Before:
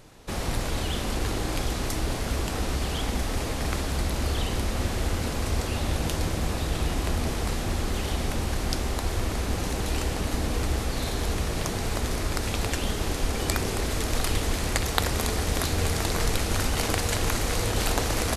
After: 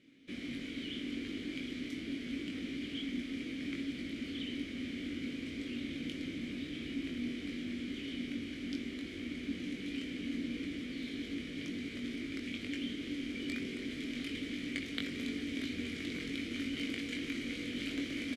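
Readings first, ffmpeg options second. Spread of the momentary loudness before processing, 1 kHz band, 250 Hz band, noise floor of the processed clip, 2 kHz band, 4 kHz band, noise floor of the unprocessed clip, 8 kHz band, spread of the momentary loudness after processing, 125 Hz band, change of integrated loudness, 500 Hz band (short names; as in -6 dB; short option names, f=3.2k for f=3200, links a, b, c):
3 LU, -29.0 dB, -4.0 dB, -44 dBFS, -9.5 dB, -11.0 dB, -30 dBFS, -24.5 dB, 3 LU, -22.5 dB, -11.5 dB, -16.5 dB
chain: -filter_complex "[0:a]asplit=3[a][b][c];[a]bandpass=f=270:t=q:w=8,volume=0dB[d];[b]bandpass=f=2.29k:t=q:w=8,volume=-6dB[e];[c]bandpass=f=3.01k:t=q:w=8,volume=-9dB[f];[d][e][f]amix=inputs=3:normalize=0,bandreject=f=50:t=h:w=6,bandreject=f=100:t=h:w=6,asplit=2[g][h];[h]adelay=21,volume=-5dB[i];[g][i]amix=inputs=2:normalize=0,volume=1.5dB"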